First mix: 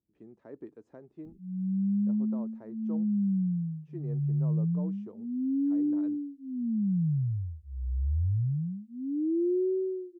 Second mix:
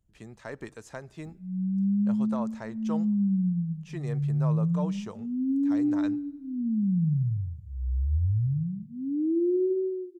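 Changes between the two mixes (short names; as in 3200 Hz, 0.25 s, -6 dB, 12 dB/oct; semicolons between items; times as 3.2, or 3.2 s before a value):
speech: remove band-pass 320 Hz, Q 2.1; reverb: on, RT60 1.2 s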